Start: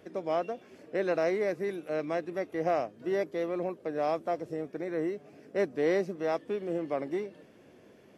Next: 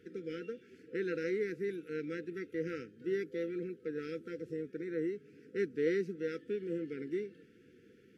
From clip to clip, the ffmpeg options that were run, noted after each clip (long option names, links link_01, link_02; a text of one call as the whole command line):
ffmpeg -i in.wav -af "afftfilt=real='re*(1-between(b*sr/4096,510,1300))':imag='im*(1-between(b*sr/4096,510,1300))':win_size=4096:overlap=0.75,highshelf=frequency=4400:gain=-6.5,volume=-3.5dB" out.wav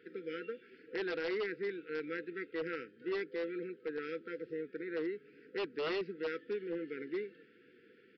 ffmpeg -i in.wav -af "bandpass=frequency=1400:width_type=q:width=0.53:csg=0,aresample=11025,aeval=exprs='0.0168*(abs(mod(val(0)/0.0168+3,4)-2)-1)':channel_layout=same,aresample=44100,volume=5dB" out.wav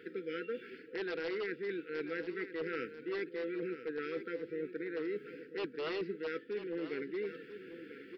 ffmpeg -i in.wav -af "areverse,acompressor=threshold=-46dB:ratio=6,areverse,aecho=1:1:991:0.266,volume=9.5dB" out.wav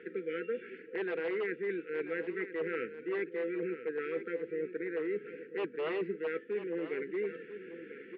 ffmpeg -i in.wav -af "highpass=frequency=120:width=0.5412,highpass=frequency=120:width=1.3066,equalizer=frequency=140:width_type=q:width=4:gain=-7,equalizer=frequency=280:width_type=q:width=4:gain=-8,equalizer=frequency=1400:width_type=q:width=4:gain=-5,lowpass=frequency=2500:width=0.5412,lowpass=frequency=2500:width=1.3066,volume=4.5dB" out.wav